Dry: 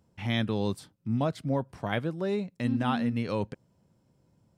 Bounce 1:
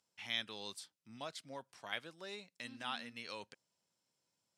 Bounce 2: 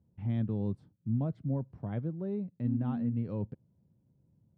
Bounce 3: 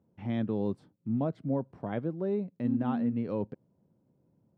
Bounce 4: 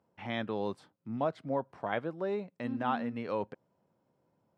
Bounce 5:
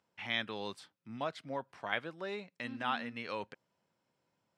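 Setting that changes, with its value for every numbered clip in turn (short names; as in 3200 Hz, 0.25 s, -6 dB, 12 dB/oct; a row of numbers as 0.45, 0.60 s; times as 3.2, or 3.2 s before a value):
band-pass, frequency: 5800, 110, 290, 820, 2100 Hz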